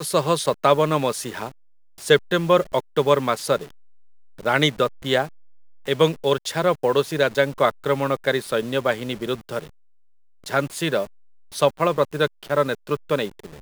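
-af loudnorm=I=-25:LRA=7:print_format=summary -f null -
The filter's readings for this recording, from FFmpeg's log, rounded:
Input Integrated:    -22.3 LUFS
Input True Peak:      -2.2 dBTP
Input LRA:             4.0 LU
Input Threshold:     -32.8 LUFS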